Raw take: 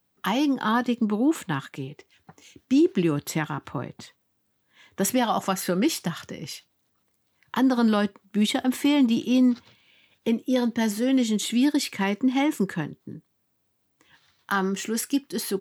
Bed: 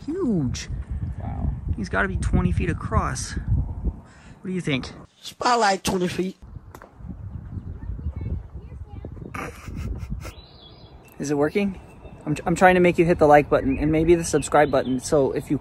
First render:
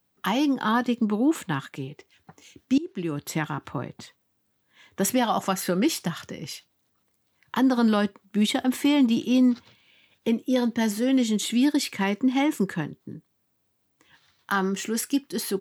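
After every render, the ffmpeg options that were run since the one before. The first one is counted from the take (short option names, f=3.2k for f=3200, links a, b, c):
-filter_complex "[0:a]asplit=2[a][b];[a]atrim=end=2.78,asetpts=PTS-STARTPTS,afade=t=out:st=2.776:d=0.004:c=hsin:silence=0.0841395[c];[b]atrim=start=2.78,asetpts=PTS-STARTPTS,afade=t=in:d=0.66:silence=0.0841395[d];[c][d]concat=n=2:v=0:a=1"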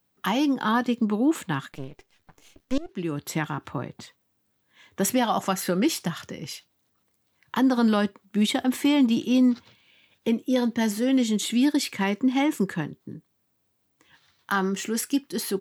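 -filter_complex "[0:a]asettb=1/sr,asplit=3[a][b][c];[a]atrim=end=1.724[d];[b]atrim=start=1.72:end=2.89,asetpts=PTS-STARTPTS,afade=t=in:d=0.004:c=qsin,afade=t=out:st=1.166:d=0.004:c=qsin,aeval=exprs='max(val(0),0)':c=same[e];[c]atrim=start=2.886[f];[d][e]acrossfade=d=0.004:c1=hsin:c2=qsin[g];[g][f]acrossfade=d=0.004:c1=qsin:c2=hsin"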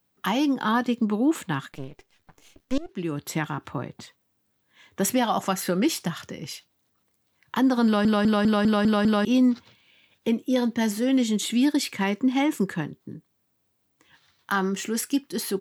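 -filter_complex "[0:a]asplit=8[a][b][c][d][e][f][g][h];[a]atrim=end=8.052[i];[b]atrim=start=7.848:end=8.052[j];[c]atrim=start=7.848:end=8.052[k];[d]atrim=start=7.848:end=8.052[l];[e]atrim=start=7.848:end=8.052[m];[f]atrim=start=7.848:end=8.052[n];[g]atrim=start=7.848:end=8.052[o];[h]atrim=start=9.248[p];[i][j]acrossfade=d=0.004:c1=hsin:c2=hsin[q];[q][k]acrossfade=d=0.004:c1=hsin:c2=hsin[r];[r][l]acrossfade=d=0.004:c1=hsin:c2=hsin[s];[s][m]acrossfade=d=0.004:c1=hsin:c2=hsin[t];[t][n]acrossfade=d=0.004:c1=hsin:c2=hsin[u];[u][o]acrossfade=d=0.004:c1=hsin:c2=hsin[v];[v][p]acrossfade=d=0.004:c1=hsin:c2=hsin"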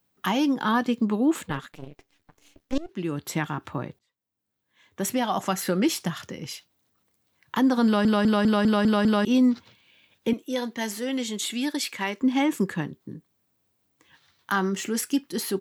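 -filter_complex "[0:a]asplit=3[a][b][c];[a]afade=t=out:st=1.46:d=0.02[d];[b]tremolo=f=290:d=0.75,afade=t=in:st=1.46:d=0.02,afade=t=out:st=2.74:d=0.02[e];[c]afade=t=in:st=2.74:d=0.02[f];[d][e][f]amix=inputs=3:normalize=0,asettb=1/sr,asplit=3[g][h][i];[g]atrim=end=10.334[j];[h]atrim=start=10.33:end=12.22,asetpts=PTS-STARTPTS,afade=t=in:d=0.004:c=qsin,afade=t=out:st=1.886:d=0.004:c=qsin,highpass=f=570:p=1[k];[i]atrim=start=12.216[l];[j][k]acrossfade=d=0.004:c1=hsin:c2=qsin[m];[m][l]acrossfade=d=0.004:c1=qsin:c2=hsin,asplit=2[n][o];[n]atrim=end=3.99,asetpts=PTS-STARTPTS,afade=t=out:st=3.986:d=0.004:c=hsin[p];[o]atrim=start=3.99,asetpts=PTS-STARTPTS,afade=t=in:d=1.64[q];[p][q]concat=n=2:v=0:a=1"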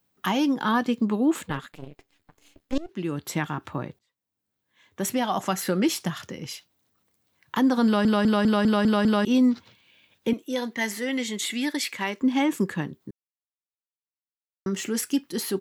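-filter_complex "[0:a]asettb=1/sr,asplit=3[a][b][c];[a]atrim=end=1.574[d];[b]atrim=start=1.57:end=2.77,asetpts=PTS-STARTPTS,afade=t=in:d=0.004:c=qsin,afade=t=out:st=1.196:d=0.004:c=qsin,bandreject=f=5.8k:w=12[e];[c]atrim=start=2.766[f];[d][e]acrossfade=d=0.004:c1=hsin:c2=qsin[g];[g][f]acrossfade=d=0.004:c1=qsin:c2=hsin,asettb=1/sr,asplit=3[h][i][j];[h]atrim=end=10.724[k];[i]atrim=start=10.72:end=11.94,asetpts=PTS-STARTPTS,afade=t=in:d=0.004:c=qsin,afade=t=out:st=1.216:d=0.004:c=qsin,equalizer=f=2k:t=o:w=0.27:g=10[l];[j]atrim=start=11.936[m];[k][l]acrossfade=d=0.004:c1=hsin:c2=qsin[n];[n][m]acrossfade=d=0.004:c1=qsin:c2=hsin,asplit=3[o][p][q];[o]atrim=end=13.11,asetpts=PTS-STARTPTS,afade=t=out:st=13.106:d=0.004:c=hsin[r];[p]atrim=start=13.11:end=14.66,asetpts=PTS-STARTPTS,volume=0[s];[q]atrim=start=14.66,asetpts=PTS-STARTPTS,afade=t=in:d=0.004:c=hsin[t];[r][s][t]concat=n=3:v=0:a=1"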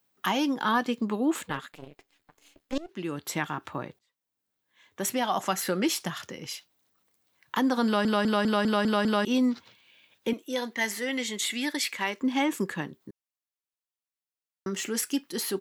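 -af "lowshelf=f=260:g=-9.5"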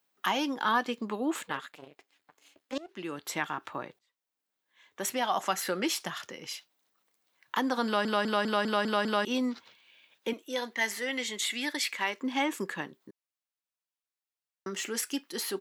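-af "highpass=f=460:p=1,highshelf=f=6.3k:g=-4.5"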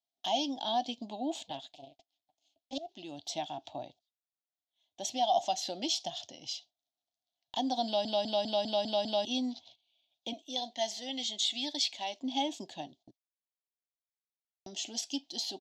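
-af "agate=range=-14dB:threshold=-55dB:ratio=16:detection=peak,firequalizer=gain_entry='entry(120,0);entry(180,-11);entry(270,-2);entry(450,-18);entry(680,9);entry(1200,-30);entry(2000,-20);entry(3300,4);entry(6400,0);entry(9700,-22)':delay=0.05:min_phase=1"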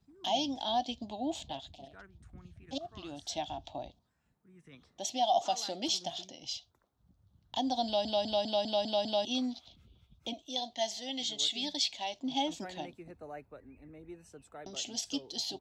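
-filter_complex "[1:a]volume=-31.5dB[a];[0:a][a]amix=inputs=2:normalize=0"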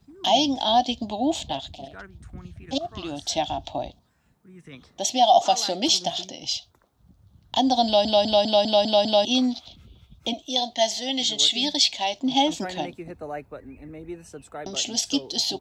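-af "volume=11.5dB"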